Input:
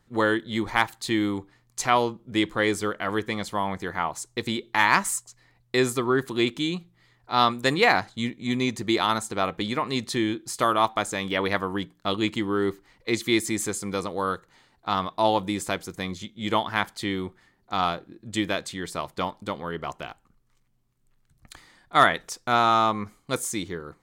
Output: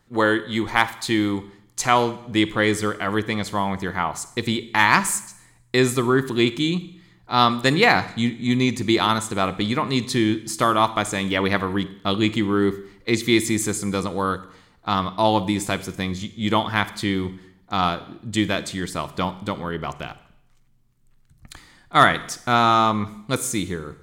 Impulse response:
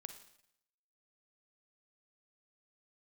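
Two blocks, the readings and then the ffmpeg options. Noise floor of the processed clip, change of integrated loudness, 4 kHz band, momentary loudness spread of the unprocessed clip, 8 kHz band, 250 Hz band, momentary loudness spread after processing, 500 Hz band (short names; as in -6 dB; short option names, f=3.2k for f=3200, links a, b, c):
-57 dBFS, +4.0 dB, +4.0 dB, 12 LU, +4.0 dB, +5.5 dB, 11 LU, +3.0 dB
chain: -filter_complex "[0:a]asplit=2[a][b];[b]asubboost=boost=4.5:cutoff=250[c];[1:a]atrim=start_sample=2205,lowshelf=f=160:g=-7.5[d];[c][d]afir=irnorm=-1:irlink=0,volume=5.5dB[e];[a][e]amix=inputs=2:normalize=0,volume=-2dB"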